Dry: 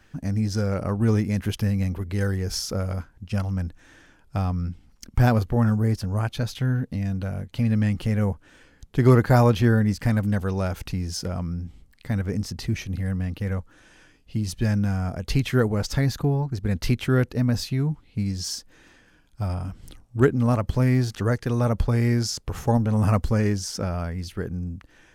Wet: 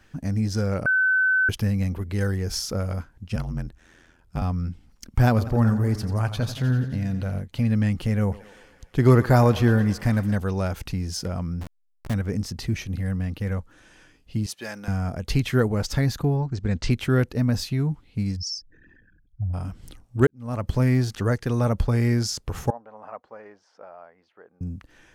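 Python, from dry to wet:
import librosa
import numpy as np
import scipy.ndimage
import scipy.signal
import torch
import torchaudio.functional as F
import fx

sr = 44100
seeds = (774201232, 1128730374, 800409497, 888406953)

y = fx.ring_mod(x, sr, carrier_hz=42.0, at=(3.35, 4.42))
y = fx.echo_warbled(y, sr, ms=86, feedback_pct=66, rate_hz=2.8, cents=81, wet_db=-12.5, at=(5.29, 7.39))
y = fx.echo_thinned(y, sr, ms=115, feedback_pct=72, hz=340.0, wet_db=-16.0, at=(8.31, 10.35), fade=0.02)
y = fx.delta_hold(y, sr, step_db=-29.5, at=(11.61, 12.14))
y = fx.highpass(y, sr, hz=520.0, slope=12, at=(14.46, 14.88))
y = fx.steep_lowpass(y, sr, hz=8300.0, slope=48, at=(16.37, 16.91))
y = fx.envelope_sharpen(y, sr, power=3.0, at=(18.35, 19.53), fade=0.02)
y = fx.ladder_bandpass(y, sr, hz=880.0, resonance_pct=30, at=(22.7, 24.61))
y = fx.edit(y, sr, fx.bleep(start_s=0.86, length_s=0.63, hz=1520.0, db=-17.0),
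    fx.fade_in_span(start_s=20.27, length_s=0.4, curve='qua'), tone=tone)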